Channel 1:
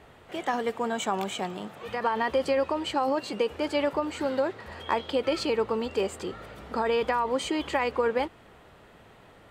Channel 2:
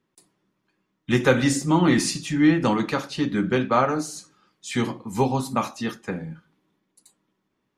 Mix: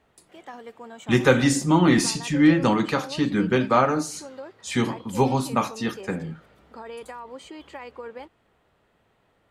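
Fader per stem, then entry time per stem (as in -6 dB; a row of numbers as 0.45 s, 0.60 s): -12.5 dB, +1.0 dB; 0.00 s, 0.00 s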